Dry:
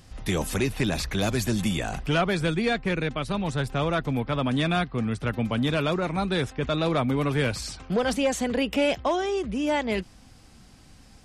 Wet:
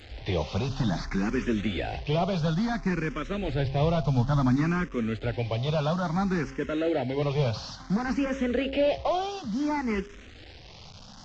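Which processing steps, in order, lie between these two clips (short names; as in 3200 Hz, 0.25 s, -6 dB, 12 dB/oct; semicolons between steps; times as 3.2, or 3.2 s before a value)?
delta modulation 32 kbps, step -39.5 dBFS; 3.42–4.56 low shelf 140 Hz +10 dB; 6.57–7.22 notch comb 1200 Hz; de-hum 135.3 Hz, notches 6; endless phaser +0.58 Hz; gain +2 dB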